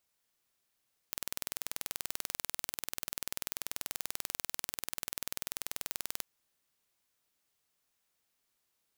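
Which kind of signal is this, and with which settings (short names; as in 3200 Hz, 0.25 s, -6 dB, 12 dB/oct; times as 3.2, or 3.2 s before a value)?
pulse train 20.5/s, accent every 0, -8 dBFS 5.10 s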